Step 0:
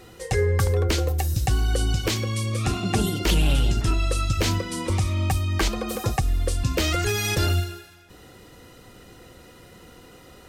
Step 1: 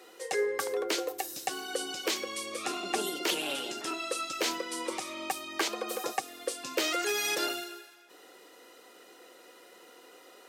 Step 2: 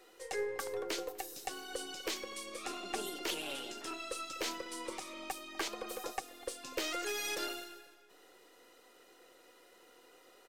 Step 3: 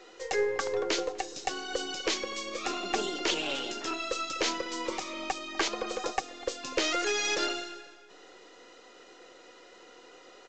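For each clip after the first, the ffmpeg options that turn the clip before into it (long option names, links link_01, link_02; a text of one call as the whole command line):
ffmpeg -i in.wav -af "highpass=frequency=340:width=0.5412,highpass=frequency=340:width=1.3066,volume=-4dB" out.wav
ffmpeg -i in.wav -filter_complex "[0:a]aeval=exprs='if(lt(val(0),0),0.708*val(0),val(0))':channel_layout=same,asplit=2[link_01][link_02];[link_02]adelay=248,lowpass=frequency=1000:poles=1,volume=-18dB,asplit=2[link_03][link_04];[link_04]adelay=248,lowpass=frequency=1000:poles=1,volume=0.55,asplit=2[link_05][link_06];[link_06]adelay=248,lowpass=frequency=1000:poles=1,volume=0.55,asplit=2[link_07][link_08];[link_08]adelay=248,lowpass=frequency=1000:poles=1,volume=0.55,asplit=2[link_09][link_10];[link_10]adelay=248,lowpass=frequency=1000:poles=1,volume=0.55[link_11];[link_01][link_03][link_05][link_07][link_09][link_11]amix=inputs=6:normalize=0,volume=-6dB" out.wav
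ffmpeg -i in.wav -af "volume=8.5dB" -ar 16000 -c:a pcm_alaw out.wav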